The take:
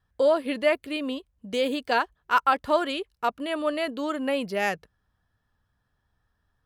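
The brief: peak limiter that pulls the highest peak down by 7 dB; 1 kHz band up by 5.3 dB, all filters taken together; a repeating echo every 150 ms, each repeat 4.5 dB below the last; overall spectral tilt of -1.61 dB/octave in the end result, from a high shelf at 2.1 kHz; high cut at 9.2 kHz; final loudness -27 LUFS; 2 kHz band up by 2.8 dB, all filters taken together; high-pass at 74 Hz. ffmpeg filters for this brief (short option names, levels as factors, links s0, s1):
-af "highpass=74,lowpass=9200,equalizer=f=1000:t=o:g=7,equalizer=f=2000:t=o:g=5,highshelf=f=2100:g=-7.5,alimiter=limit=0.266:level=0:latency=1,aecho=1:1:150|300|450|600|750|900|1050|1200|1350:0.596|0.357|0.214|0.129|0.0772|0.0463|0.0278|0.0167|0.01,volume=0.708"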